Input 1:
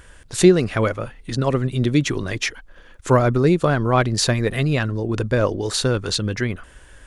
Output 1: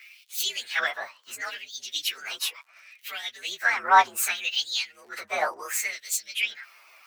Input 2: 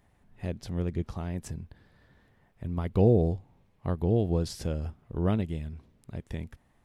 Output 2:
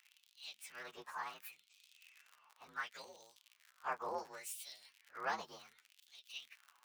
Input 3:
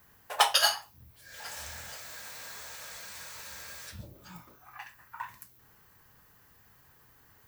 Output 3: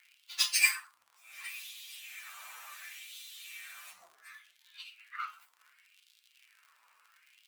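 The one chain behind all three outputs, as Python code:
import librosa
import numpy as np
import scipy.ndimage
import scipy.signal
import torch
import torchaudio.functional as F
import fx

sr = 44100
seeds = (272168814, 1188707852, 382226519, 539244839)

y = fx.partial_stretch(x, sr, pct=120)
y = fx.dmg_crackle(y, sr, seeds[0], per_s=77.0, level_db=-48.0)
y = fx.filter_lfo_highpass(y, sr, shape='sine', hz=0.69, low_hz=1000.0, high_hz=3600.0, q=3.0)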